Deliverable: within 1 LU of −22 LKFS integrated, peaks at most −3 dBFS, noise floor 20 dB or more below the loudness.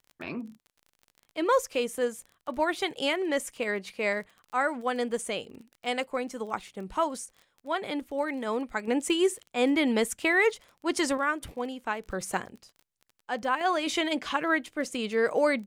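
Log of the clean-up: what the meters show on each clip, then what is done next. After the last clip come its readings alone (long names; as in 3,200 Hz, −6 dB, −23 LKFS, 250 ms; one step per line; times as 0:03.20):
crackle rate 27 per second; integrated loudness −29.0 LKFS; sample peak −12.5 dBFS; target loudness −22.0 LKFS
→ click removal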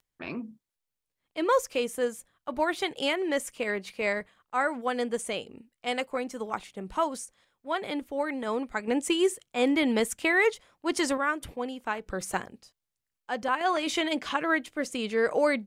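crackle rate 0.13 per second; integrated loudness −29.0 LKFS; sample peak −12.5 dBFS; target loudness −22.0 LKFS
→ level +7 dB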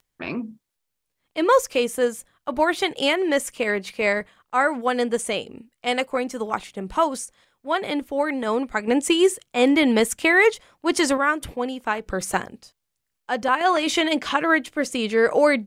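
integrated loudness −22.0 LKFS; sample peak −5.5 dBFS; background noise floor −79 dBFS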